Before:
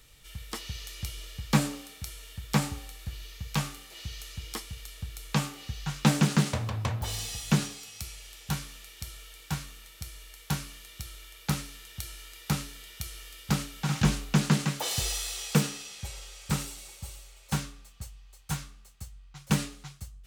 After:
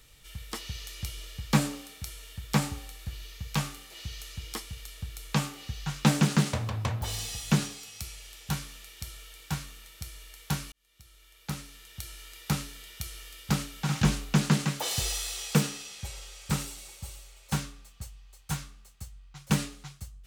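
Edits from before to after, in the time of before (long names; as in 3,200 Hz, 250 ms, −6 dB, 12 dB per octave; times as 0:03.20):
0:10.72–0:12.34: fade in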